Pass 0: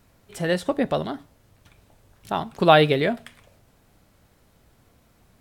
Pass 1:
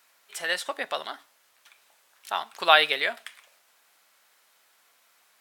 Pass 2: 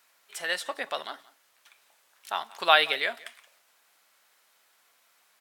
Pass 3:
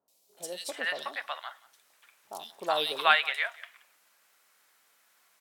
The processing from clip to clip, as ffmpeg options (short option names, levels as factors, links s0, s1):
-af "highpass=1200,volume=1.5"
-af "aecho=1:1:178:0.0841,volume=0.794"
-filter_complex "[0:a]acrossover=split=700|3600[s0][s1][s2];[s2]adelay=80[s3];[s1]adelay=370[s4];[s0][s4][s3]amix=inputs=3:normalize=0"